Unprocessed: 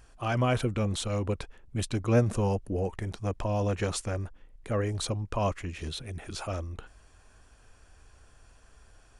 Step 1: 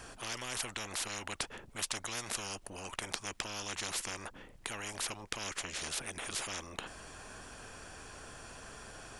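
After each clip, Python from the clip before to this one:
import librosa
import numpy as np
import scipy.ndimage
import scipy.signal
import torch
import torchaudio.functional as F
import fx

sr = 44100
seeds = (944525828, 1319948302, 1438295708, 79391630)

y = fx.spectral_comp(x, sr, ratio=10.0)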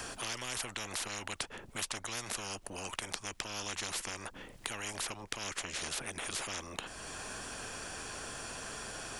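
y = fx.band_squash(x, sr, depth_pct=70)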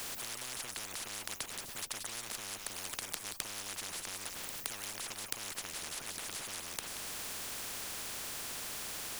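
y = x + 10.0 ** (-15.5 / 20.0) * np.pad(x, (int(180 * sr / 1000.0), 0))[:len(x)]
y = fx.spectral_comp(y, sr, ratio=10.0)
y = y * 10.0 ** (2.0 / 20.0)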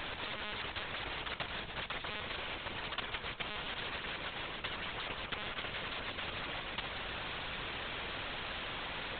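y = fx.lpc_monotone(x, sr, seeds[0], pitch_hz=210.0, order=16)
y = fx.echo_feedback(y, sr, ms=149, feedback_pct=60, wet_db=-14.5)
y = y * 10.0 ** (6.0 / 20.0)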